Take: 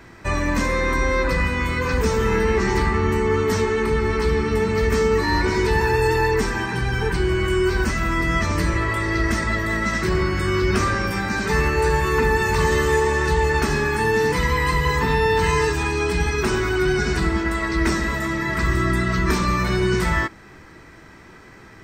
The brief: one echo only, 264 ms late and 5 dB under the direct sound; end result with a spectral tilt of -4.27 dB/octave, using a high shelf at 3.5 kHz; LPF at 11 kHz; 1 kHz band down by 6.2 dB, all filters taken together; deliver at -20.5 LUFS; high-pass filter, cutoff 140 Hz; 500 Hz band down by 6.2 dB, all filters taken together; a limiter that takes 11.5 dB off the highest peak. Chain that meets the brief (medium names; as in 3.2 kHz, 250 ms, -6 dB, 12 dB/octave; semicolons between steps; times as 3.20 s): high-pass 140 Hz; low-pass 11 kHz; peaking EQ 500 Hz -7 dB; peaking EQ 1 kHz -5 dB; treble shelf 3.5 kHz -7 dB; peak limiter -23 dBFS; delay 264 ms -5 dB; trim +9 dB